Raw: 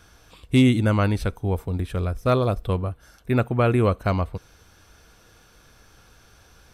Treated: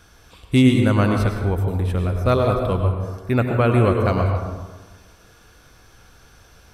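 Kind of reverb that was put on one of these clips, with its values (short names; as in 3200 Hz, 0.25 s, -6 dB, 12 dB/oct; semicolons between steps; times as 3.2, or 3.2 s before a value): plate-style reverb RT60 1.3 s, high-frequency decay 0.45×, pre-delay 90 ms, DRR 3 dB; gain +1.5 dB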